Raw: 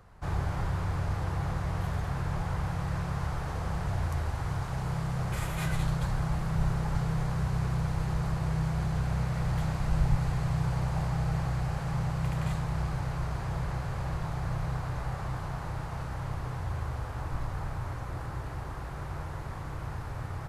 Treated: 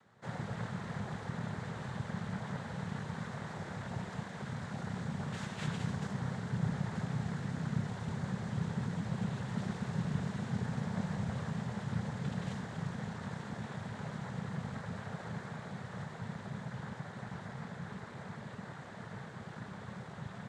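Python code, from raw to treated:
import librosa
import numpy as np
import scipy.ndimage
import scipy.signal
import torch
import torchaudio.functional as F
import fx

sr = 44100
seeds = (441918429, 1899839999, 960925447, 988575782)

y = fx.noise_vocoder(x, sr, seeds[0], bands=6)
y = F.gain(torch.from_numpy(y), -5.5).numpy()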